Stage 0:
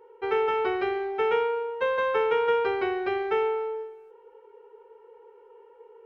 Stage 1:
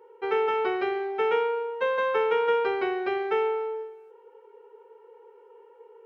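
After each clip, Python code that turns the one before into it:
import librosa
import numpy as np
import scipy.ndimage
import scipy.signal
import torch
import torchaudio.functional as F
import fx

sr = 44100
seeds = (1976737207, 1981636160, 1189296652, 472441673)

y = scipy.signal.sosfilt(scipy.signal.butter(2, 160.0, 'highpass', fs=sr, output='sos'), x)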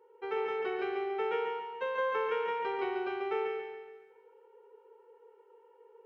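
y = fx.echo_feedback(x, sr, ms=140, feedback_pct=48, wet_db=-4.0)
y = y * 10.0 ** (-9.0 / 20.0)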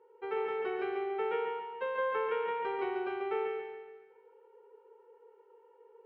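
y = fx.air_absorb(x, sr, metres=190.0)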